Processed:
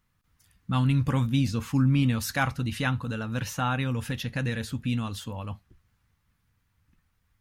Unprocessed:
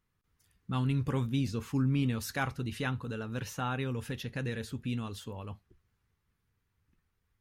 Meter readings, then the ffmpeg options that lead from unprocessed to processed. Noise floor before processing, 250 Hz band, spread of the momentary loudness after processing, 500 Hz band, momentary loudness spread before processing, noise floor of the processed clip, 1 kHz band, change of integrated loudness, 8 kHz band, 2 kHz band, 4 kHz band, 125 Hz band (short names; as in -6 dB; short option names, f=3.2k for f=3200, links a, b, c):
-79 dBFS, +6.0 dB, 12 LU, +2.0 dB, 12 LU, -72 dBFS, +6.5 dB, +6.5 dB, +7.0 dB, +7.0 dB, +7.0 dB, +7.0 dB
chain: -af "equalizer=f=400:t=o:w=0.35:g=-12,volume=7dB"